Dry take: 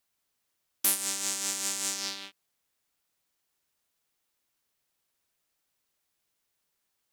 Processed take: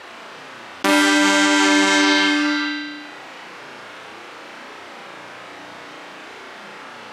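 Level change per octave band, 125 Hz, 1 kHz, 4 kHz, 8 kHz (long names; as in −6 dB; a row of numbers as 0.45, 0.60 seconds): can't be measured, +25.0 dB, +16.0 dB, +3.5 dB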